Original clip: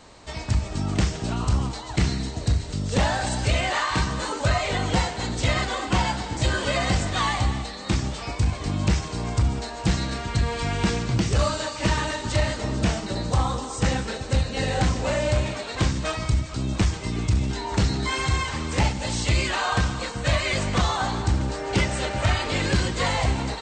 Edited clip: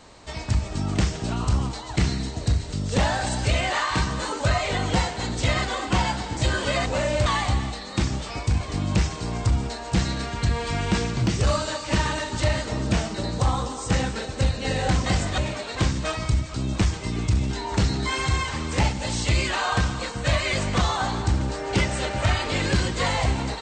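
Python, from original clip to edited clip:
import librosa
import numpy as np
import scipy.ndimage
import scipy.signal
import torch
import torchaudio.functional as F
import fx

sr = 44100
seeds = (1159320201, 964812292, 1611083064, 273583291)

y = fx.edit(x, sr, fx.swap(start_s=6.86, length_s=0.32, other_s=14.98, other_length_s=0.4), tone=tone)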